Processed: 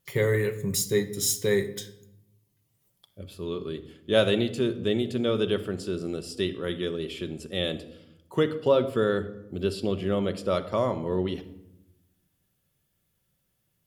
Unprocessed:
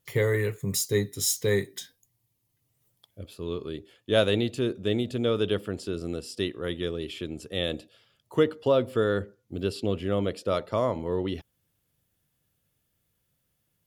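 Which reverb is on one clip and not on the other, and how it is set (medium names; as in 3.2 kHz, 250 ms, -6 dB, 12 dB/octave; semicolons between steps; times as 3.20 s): simulated room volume 2800 m³, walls furnished, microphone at 1.1 m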